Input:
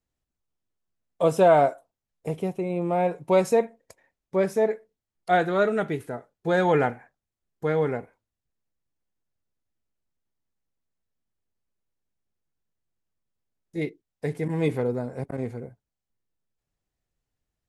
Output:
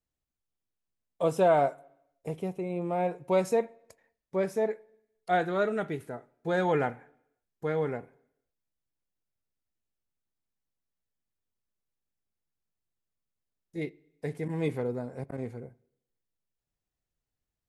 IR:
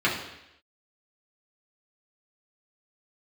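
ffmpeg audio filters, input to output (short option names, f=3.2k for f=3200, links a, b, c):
-filter_complex "[0:a]asplit=2[a][b];[1:a]atrim=start_sample=2205,adelay=18[c];[b][c]afir=irnorm=-1:irlink=0,volume=-35.5dB[d];[a][d]amix=inputs=2:normalize=0,volume=-5.5dB"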